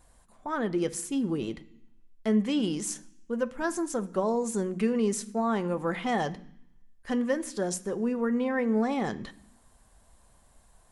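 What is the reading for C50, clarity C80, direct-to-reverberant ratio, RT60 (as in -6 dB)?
18.5 dB, 21.5 dB, 10.0 dB, 0.65 s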